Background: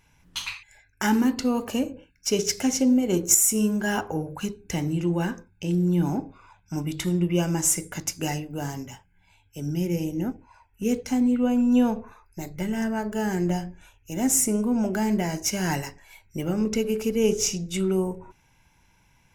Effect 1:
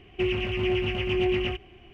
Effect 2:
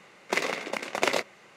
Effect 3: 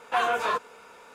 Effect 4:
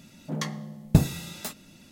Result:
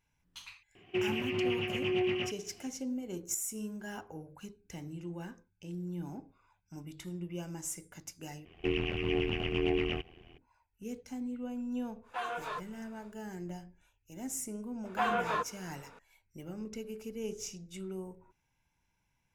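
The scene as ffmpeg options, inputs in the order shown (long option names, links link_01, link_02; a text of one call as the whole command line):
ffmpeg -i bed.wav -i cue0.wav -i cue1.wav -i cue2.wav -filter_complex "[1:a]asplit=2[link_01][link_02];[3:a]asplit=2[link_03][link_04];[0:a]volume=-17dB[link_05];[link_01]highpass=frequency=110:width=0.5412,highpass=frequency=110:width=1.3066[link_06];[link_02]tremolo=f=83:d=0.947[link_07];[link_04]bass=frequency=250:gain=8,treble=frequency=4000:gain=-8[link_08];[link_05]asplit=2[link_09][link_10];[link_09]atrim=end=8.454[link_11];[link_07]atrim=end=1.93,asetpts=PTS-STARTPTS,volume=-1.5dB[link_12];[link_10]atrim=start=10.376[link_13];[link_06]atrim=end=1.93,asetpts=PTS-STARTPTS,volume=-5.5dB,afade=type=in:duration=0.004:curve=hsin,afade=type=out:start_time=1.926:duration=0.004:curve=hsin,adelay=750[link_14];[link_03]atrim=end=1.14,asetpts=PTS-STARTPTS,volume=-12.5dB,afade=type=in:duration=0.1,afade=type=out:start_time=1.04:duration=0.1,adelay=12020[link_15];[link_08]atrim=end=1.14,asetpts=PTS-STARTPTS,volume=-6dB,afade=type=in:duration=0.004:curve=hsin,afade=type=out:start_time=1.136:duration=0.004:curve=hsin,adelay=14850[link_16];[link_11][link_12]acrossfade=duration=0.004:curve1=hsin:curve2=hsin[link_17];[link_17][link_13]acrossfade=duration=0.004:curve1=hsin:curve2=hsin[link_18];[link_18][link_14][link_15][link_16]amix=inputs=4:normalize=0" out.wav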